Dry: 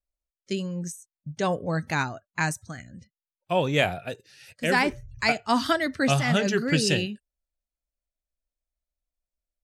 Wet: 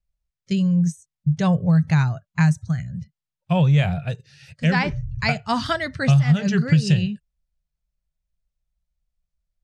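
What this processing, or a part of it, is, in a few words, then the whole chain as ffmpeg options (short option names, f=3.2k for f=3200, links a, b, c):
jukebox: -filter_complex "[0:a]asettb=1/sr,asplit=3[a][b][c];[a]atrim=end=4.654[d];[b]atrim=start=4.65:end=5.29,asetpts=PTS-STARTPTS,afade=t=in:d=0.004:c=qsin,afade=t=out:st=0.636:d=0.004:c=qsin,lowpass=f=6.4k:w=0.5412,lowpass=f=6.4k:w=1.3066[e];[c]atrim=start=5.286[f];[d][e]acrossfade=d=0.004:c1=hsin:c2=qsin[g];[g][f]acrossfade=d=0.004:c1=qsin:c2=hsin,lowpass=7.2k,lowshelf=f=210:t=q:w=3:g=10.5,acompressor=threshold=-15dB:ratio=5,volume=1.5dB"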